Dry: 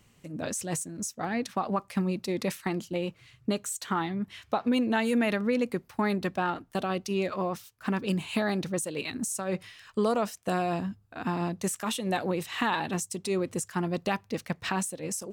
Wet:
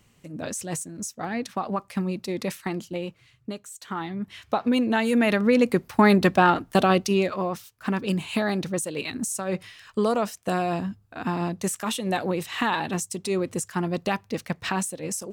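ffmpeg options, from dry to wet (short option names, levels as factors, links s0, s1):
-af "volume=10.6,afade=t=out:st=2.84:d=0.85:silence=0.334965,afade=t=in:st=3.69:d=0.81:silence=0.251189,afade=t=in:st=5.08:d=1.04:silence=0.421697,afade=t=out:st=6.9:d=0.43:silence=0.398107"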